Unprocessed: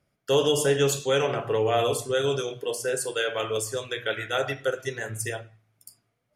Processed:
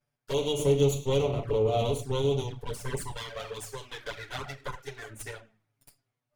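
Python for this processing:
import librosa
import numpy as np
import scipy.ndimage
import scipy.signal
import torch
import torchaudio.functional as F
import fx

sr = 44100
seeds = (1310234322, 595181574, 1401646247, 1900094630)

y = fx.lower_of_two(x, sr, delay_ms=7.0)
y = fx.low_shelf(y, sr, hz=460.0, db=9.0, at=(0.59, 3.17))
y = fx.env_flanger(y, sr, rest_ms=8.3, full_db=-20.0)
y = F.gain(torch.from_numpy(y), -5.0).numpy()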